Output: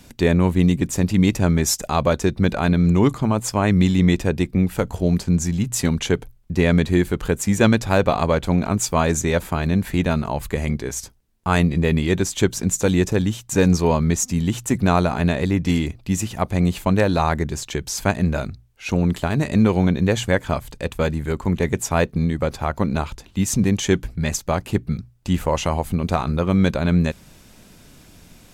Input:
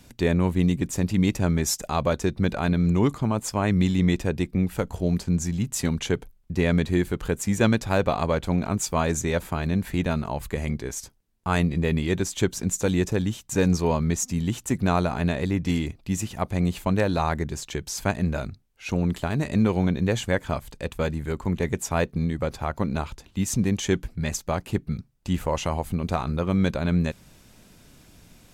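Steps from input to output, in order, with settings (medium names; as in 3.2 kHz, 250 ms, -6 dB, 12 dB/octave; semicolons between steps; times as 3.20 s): hum notches 60/120 Hz; trim +5 dB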